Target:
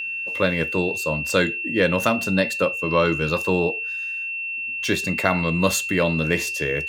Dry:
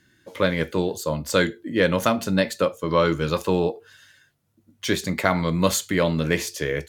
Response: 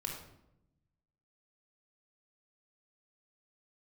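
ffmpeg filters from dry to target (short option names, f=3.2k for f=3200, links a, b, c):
-af "aeval=exprs='val(0)+0.0501*sin(2*PI*2700*n/s)':c=same"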